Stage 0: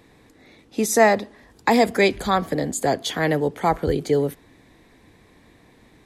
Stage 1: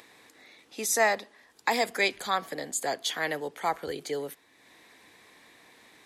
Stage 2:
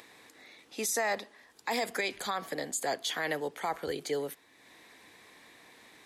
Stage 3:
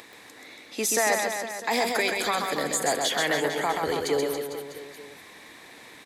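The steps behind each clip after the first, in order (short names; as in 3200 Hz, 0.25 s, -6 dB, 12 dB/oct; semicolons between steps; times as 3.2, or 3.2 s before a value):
HPF 1300 Hz 6 dB/oct; upward compressor, threshold -45 dBFS; gain -2.5 dB
limiter -22 dBFS, peak gain reduction 10 dB
in parallel at -11.5 dB: overloaded stage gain 31.5 dB; on the sum: reverse bouncing-ball echo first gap 0.13 s, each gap 1.15×, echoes 5; gain +4.5 dB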